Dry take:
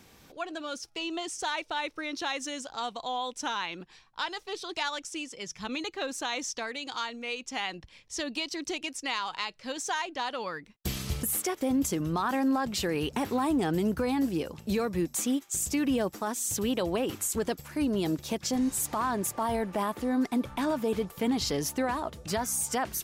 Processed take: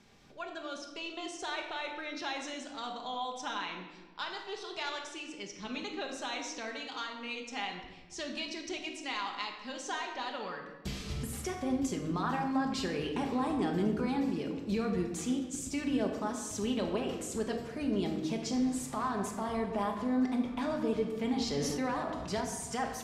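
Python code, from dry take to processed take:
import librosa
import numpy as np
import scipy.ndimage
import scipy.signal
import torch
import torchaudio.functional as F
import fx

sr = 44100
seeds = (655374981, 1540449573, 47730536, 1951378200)

y = scipy.signal.sosfilt(scipy.signal.butter(2, 6600.0, 'lowpass', fs=sr, output='sos'), x)
y = fx.room_shoebox(y, sr, seeds[0], volume_m3=860.0, walls='mixed', distance_m=1.3)
y = fx.sustainer(y, sr, db_per_s=24.0, at=(21.57, 22.41))
y = y * librosa.db_to_amplitude(-6.5)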